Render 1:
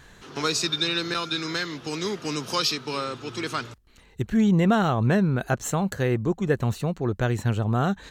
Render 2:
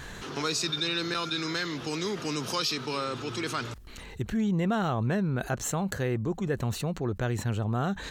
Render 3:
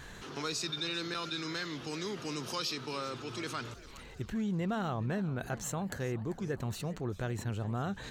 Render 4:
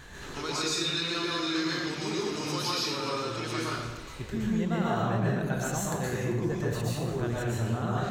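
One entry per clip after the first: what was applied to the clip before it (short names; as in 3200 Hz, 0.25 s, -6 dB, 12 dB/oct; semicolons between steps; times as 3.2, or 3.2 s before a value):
fast leveller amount 50%; gain -8 dB
warbling echo 0.399 s, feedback 56%, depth 205 cents, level -17.5 dB; gain -6.5 dB
plate-style reverb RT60 0.92 s, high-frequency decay 0.85×, pre-delay 0.105 s, DRR -5.5 dB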